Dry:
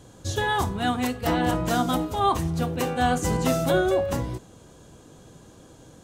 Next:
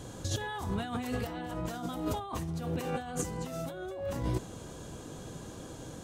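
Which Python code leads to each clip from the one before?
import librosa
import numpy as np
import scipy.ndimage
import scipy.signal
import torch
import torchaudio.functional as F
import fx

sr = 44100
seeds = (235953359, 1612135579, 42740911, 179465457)

y = fx.over_compress(x, sr, threshold_db=-33.0, ratio=-1.0)
y = y * librosa.db_to_amplitude(-3.0)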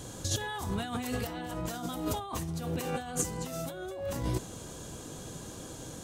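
y = fx.high_shelf(x, sr, hz=4000.0, db=8.0)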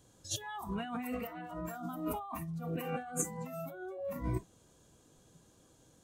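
y = fx.noise_reduce_blind(x, sr, reduce_db=18)
y = y * librosa.db_to_amplitude(-2.5)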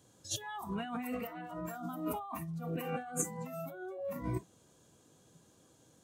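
y = scipy.signal.sosfilt(scipy.signal.butter(2, 92.0, 'highpass', fs=sr, output='sos'), x)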